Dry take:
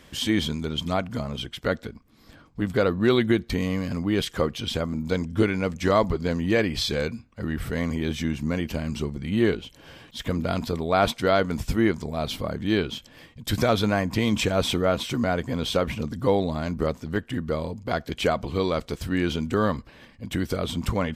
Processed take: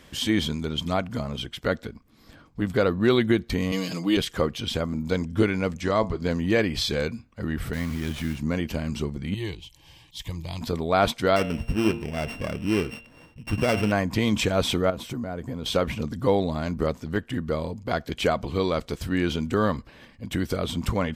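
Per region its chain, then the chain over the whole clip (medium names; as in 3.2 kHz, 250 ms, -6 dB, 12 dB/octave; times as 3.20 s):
3.72–4.17 s: high-pass 220 Hz + resonant high shelf 2.4 kHz +7.5 dB, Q 1.5 + comb 6.2 ms, depth 75%
5.81–6.22 s: low-pass 9.9 kHz 24 dB/octave + feedback comb 110 Hz, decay 0.22 s, mix 40%
7.73–8.38 s: block-companded coder 5-bit + peaking EQ 520 Hz -10 dB 1.4 oct + sliding maximum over 5 samples
9.34–10.61 s: high-order bell 520 Hz -15 dB 1.1 oct + static phaser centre 580 Hz, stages 4
11.36–13.92 s: sorted samples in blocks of 16 samples + low-pass 2.3 kHz 6 dB/octave + de-hum 115.1 Hz, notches 37
14.90–15.66 s: peaking EQ 3.5 kHz -8.5 dB 2.8 oct + compression, threshold -27 dBFS + tape noise reduction on one side only encoder only
whole clip: none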